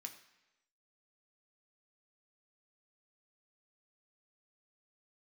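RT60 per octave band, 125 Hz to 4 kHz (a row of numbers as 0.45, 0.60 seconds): 0.90, 0.95, 1.0, 1.0, 1.0, 0.95 seconds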